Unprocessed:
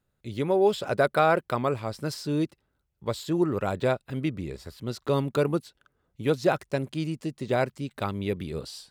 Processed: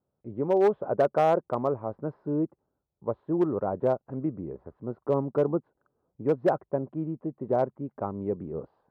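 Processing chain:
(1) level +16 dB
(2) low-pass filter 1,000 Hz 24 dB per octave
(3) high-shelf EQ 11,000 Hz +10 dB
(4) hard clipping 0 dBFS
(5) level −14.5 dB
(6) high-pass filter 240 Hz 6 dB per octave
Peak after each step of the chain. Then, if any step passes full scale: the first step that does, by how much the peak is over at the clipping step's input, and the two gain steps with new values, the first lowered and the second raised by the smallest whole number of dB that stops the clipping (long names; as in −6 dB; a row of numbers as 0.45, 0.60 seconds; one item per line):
+6.0, +5.0, +5.0, 0.0, −14.5, −12.0 dBFS
step 1, 5.0 dB
step 1 +11 dB, step 5 −9.5 dB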